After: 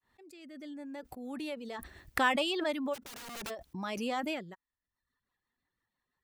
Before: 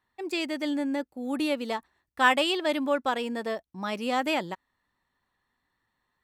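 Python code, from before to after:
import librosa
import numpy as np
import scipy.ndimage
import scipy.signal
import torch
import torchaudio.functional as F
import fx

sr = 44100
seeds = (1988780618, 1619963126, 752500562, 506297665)

y = fx.fade_in_head(x, sr, length_s=2.01)
y = fx.dereverb_blind(y, sr, rt60_s=0.76)
y = fx.rotary_switch(y, sr, hz=0.7, then_hz=6.0, switch_at_s=4.27)
y = fx.overflow_wrap(y, sr, gain_db=36.5, at=(2.93, 3.49), fade=0.02)
y = fx.pre_swell(y, sr, db_per_s=30.0)
y = y * 10.0 ** (-5.5 / 20.0)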